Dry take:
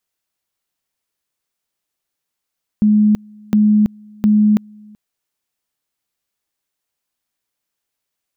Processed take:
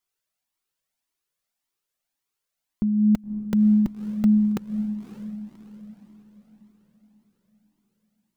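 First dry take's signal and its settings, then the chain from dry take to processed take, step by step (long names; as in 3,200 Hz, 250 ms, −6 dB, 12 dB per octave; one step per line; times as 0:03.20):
tone at two levels in turn 211 Hz −8.5 dBFS, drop 29 dB, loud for 0.33 s, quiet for 0.38 s, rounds 3
parametric band 71 Hz −13.5 dB 0.54 octaves
on a send: feedback delay with all-pass diffusion 566 ms, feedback 47%, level −10 dB
on the sum: flanger whose copies keep moving one way rising 1.8 Hz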